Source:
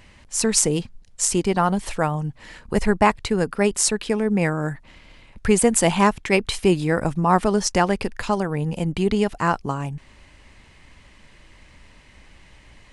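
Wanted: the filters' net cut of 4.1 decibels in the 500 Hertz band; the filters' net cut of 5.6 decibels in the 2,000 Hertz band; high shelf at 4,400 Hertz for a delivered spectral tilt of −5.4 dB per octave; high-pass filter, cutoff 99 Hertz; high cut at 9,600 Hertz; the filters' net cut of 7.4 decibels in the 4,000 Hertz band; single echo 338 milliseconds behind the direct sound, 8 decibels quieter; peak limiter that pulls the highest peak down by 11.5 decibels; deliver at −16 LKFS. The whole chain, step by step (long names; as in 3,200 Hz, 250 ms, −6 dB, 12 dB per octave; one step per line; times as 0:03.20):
high-pass filter 99 Hz
low-pass filter 9,600 Hz
parametric band 500 Hz −5 dB
parametric band 2,000 Hz −4.5 dB
parametric band 4,000 Hz −6 dB
high-shelf EQ 4,400 Hz −4.5 dB
brickwall limiter −17.5 dBFS
single-tap delay 338 ms −8 dB
level +12 dB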